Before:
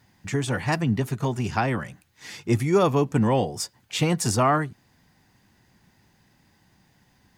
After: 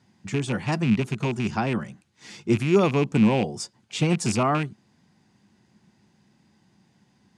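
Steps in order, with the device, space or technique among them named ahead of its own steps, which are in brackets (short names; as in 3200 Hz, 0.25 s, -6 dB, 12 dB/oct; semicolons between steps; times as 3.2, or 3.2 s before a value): car door speaker with a rattle (rattling part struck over -25 dBFS, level -18 dBFS; speaker cabinet 84–9400 Hz, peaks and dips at 150 Hz +3 dB, 210 Hz +9 dB, 360 Hz +5 dB, 1800 Hz -4 dB); gain -3 dB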